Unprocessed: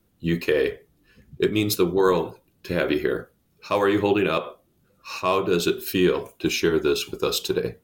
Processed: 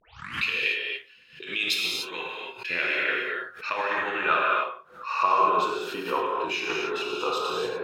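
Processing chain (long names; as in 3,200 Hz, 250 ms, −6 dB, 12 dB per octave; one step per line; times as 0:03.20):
turntable start at the beginning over 0.45 s
compressor whose output falls as the input rises −23 dBFS, ratio −0.5
dynamic equaliser 2,700 Hz, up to +6 dB, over −52 dBFS, Q 5.4
band-pass filter sweep 2,900 Hz → 1,000 Hz, 0:01.79–0:05.55
reverb whose tail is shaped and stops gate 320 ms flat, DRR −3 dB
background raised ahead of every attack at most 120 dB per second
level +5.5 dB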